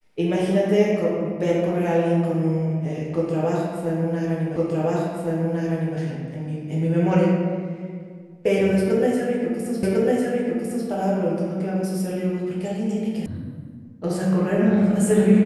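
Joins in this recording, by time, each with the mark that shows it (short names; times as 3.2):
4.56 repeat of the last 1.41 s
9.83 repeat of the last 1.05 s
13.26 sound cut off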